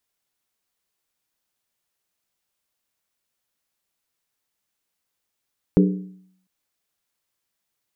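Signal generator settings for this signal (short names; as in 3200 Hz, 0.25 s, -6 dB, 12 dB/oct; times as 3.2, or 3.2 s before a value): skin hit length 0.70 s, lowest mode 186 Hz, decay 0.68 s, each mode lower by 4 dB, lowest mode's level -10.5 dB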